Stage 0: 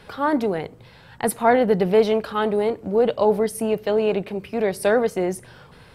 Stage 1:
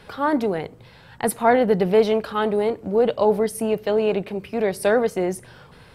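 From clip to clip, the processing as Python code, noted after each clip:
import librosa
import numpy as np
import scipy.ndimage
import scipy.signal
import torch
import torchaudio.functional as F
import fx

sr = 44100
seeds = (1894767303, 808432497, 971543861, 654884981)

y = x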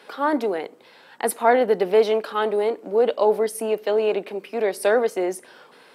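y = scipy.signal.sosfilt(scipy.signal.butter(4, 270.0, 'highpass', fs=sr, output='sos'), x)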